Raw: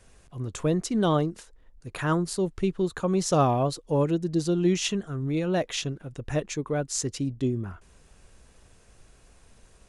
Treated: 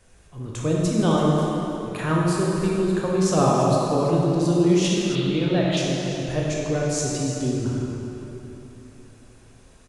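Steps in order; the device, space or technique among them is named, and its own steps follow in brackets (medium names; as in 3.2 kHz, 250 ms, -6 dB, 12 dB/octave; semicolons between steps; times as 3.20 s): cave (delay 332 ms -13.5 dB; reverberation RT60 3.3 s, pre-delay 15 ms, DRR -4 dB); 5.15–5.77 s: resonant high shelf 4.8 kHz -7 dB, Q 3; trim -1 dB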